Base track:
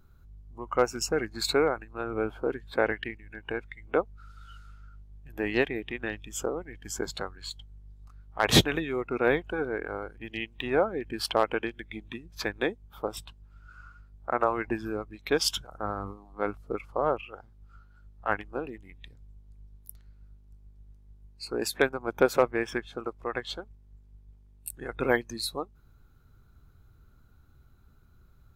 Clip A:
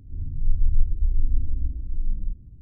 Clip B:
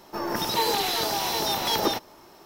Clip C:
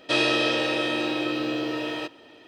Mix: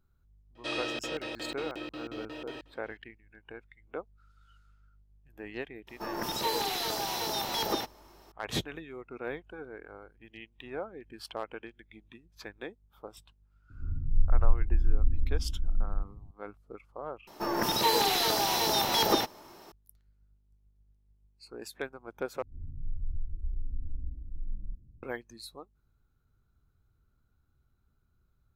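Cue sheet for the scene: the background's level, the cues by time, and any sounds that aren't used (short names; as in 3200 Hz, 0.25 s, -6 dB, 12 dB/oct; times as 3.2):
base track -13 dB
0.55 add C -12.5 dB + crackling interface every 0.18 s, samples 2048, zero, from 0.44
5.87 add B -6.5 dB
13.7 add A -3 dB
17.27 replace with B -1 dB
22.42 replace with A -11 dB + limiter -14 dBFS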